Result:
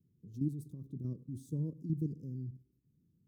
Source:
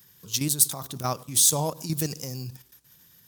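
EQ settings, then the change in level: inverse Chebyshev low-pass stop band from 680 Hz, stop band 40 dB; bass shelf 65 Hz -9 dB; -3.5 dB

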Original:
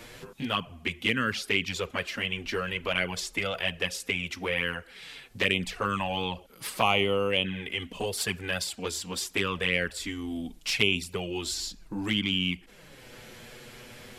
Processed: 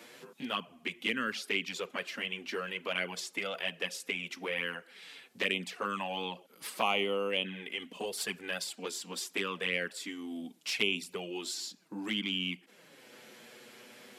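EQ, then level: high-pass 190 Hz 24 dB/octave; -5.5 dB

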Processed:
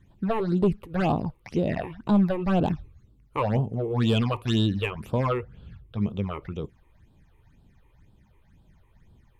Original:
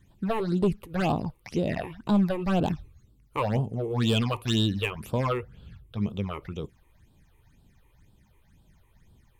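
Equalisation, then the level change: treble shelf 4.2 kHz -11.5 dB; +2.0 dB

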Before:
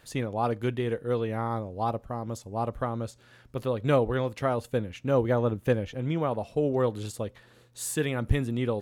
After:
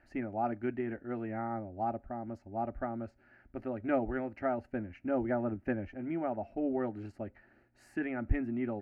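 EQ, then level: distance through air 340 m; treble shelf 11 kHz -6 dB; static phaser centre 710 Hz, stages 8; -1.5 dB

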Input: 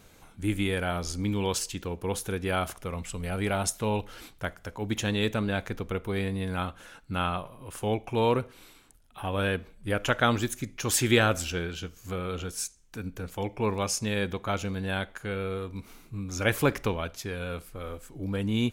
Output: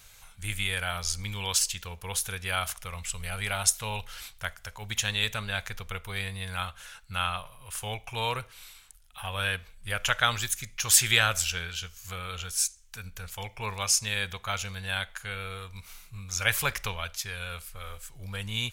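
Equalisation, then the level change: amplifier tone stack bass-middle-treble 10-0-10; +7.5 dB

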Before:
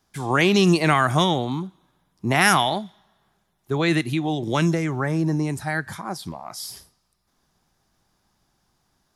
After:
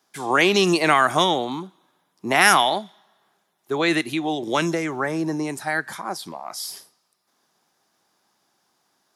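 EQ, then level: high-pass 310 Hz 12 dB/octave; +2.5 dB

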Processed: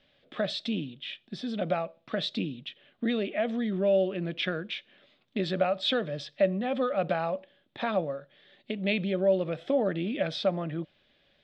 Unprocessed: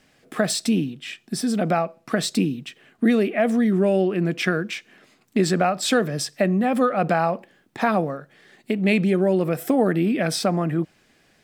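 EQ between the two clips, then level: four-pole ladder low-pass 3.8 kHz, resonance 70%; bass shelf 65 Hz +9 dB; peaking EQ 570 Hz +13 dB 0.21 oct; 0.0 dB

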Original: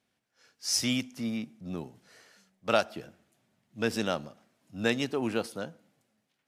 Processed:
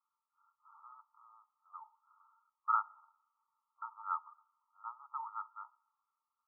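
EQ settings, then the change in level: rippled Chebyshev high-pass 870 Hz, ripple 9 dB; brick-wall FIR low-pass 1.4 kHz; +6.0 dB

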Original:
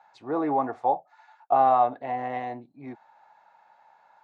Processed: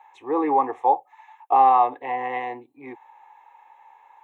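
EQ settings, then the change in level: high-pass 410 Hz 6 dB/octave; static phaser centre 960 Hz, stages 8; +9.0 dB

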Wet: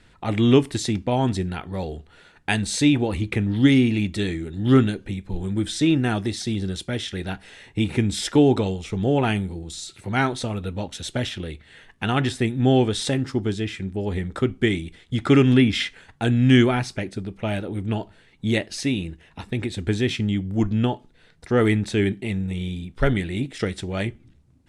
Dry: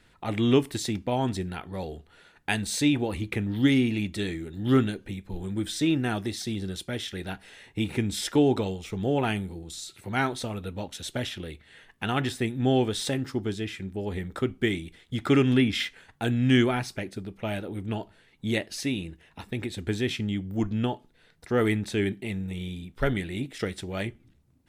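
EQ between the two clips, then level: low-pass 10 kHz 24 dB/octave; bass shelf 190 Hz +4 dB; +4.0 dB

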